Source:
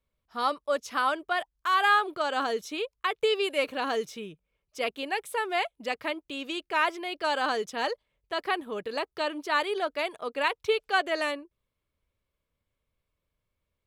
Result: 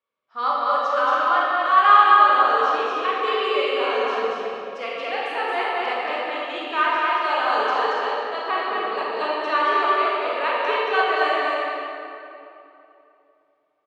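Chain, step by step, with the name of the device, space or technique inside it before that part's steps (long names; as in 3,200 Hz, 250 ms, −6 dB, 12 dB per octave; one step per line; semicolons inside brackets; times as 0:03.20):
station announcement (band-pass filter 390–3,700 Hz; parametric band 1,200 Hz +8.5 dB 0.26 octaves; loudspeakers that aren't time-aligned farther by 78 metres −2 dB, 97 metres −12 dB; convolution reverb RT60 2.9 s, pre-delay 18 ms, DRR −5 dB)
level −2 dB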